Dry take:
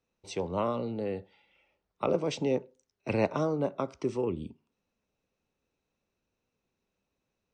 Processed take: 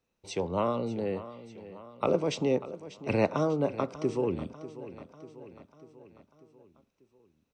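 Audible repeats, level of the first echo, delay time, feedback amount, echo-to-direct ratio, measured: 4, -15.0 dB, 593 ms, 56%, -13.5 dB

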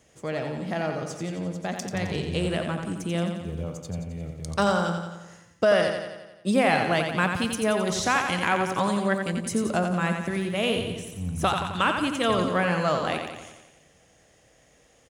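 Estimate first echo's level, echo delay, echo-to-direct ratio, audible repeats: -6.0 dB, 88 ms, -4.0 dB, 7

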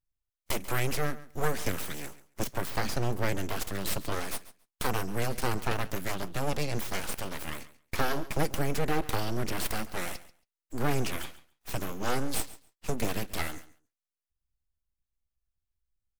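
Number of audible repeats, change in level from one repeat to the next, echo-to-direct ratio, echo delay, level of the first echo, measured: 2, -16.5 dB, -17.5 dB, 138 ms, -17.5 dB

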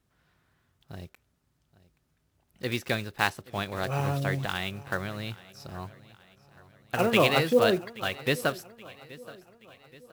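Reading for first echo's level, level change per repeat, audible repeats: -20.0 dB, -6.5 dB, 3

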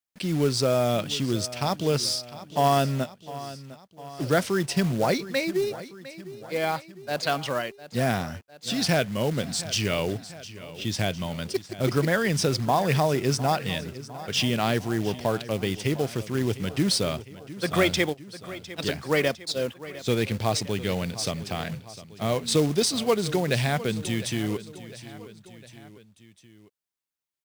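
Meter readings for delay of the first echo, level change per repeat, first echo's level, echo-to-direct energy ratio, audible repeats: 705 ms, -5.0 dB, -16.0 dB, -14.5 dB, 3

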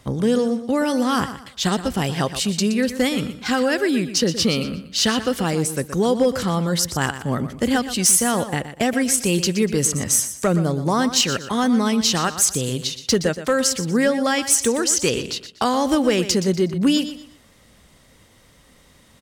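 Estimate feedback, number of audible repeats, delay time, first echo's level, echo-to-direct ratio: 30%, 3, 121 ms, -12.0 dB, -11.5 dB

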